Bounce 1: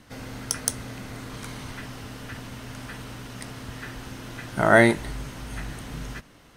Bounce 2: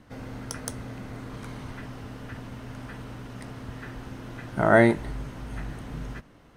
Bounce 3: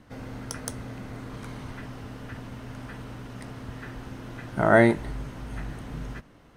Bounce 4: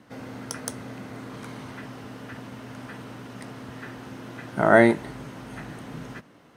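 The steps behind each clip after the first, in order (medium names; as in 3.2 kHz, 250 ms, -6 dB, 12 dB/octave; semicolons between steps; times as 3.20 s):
treble shelf 2.2 kHz -11.5 dB
no audible change
high-pass 150 Hz 12 dB/octave; trim +2 dB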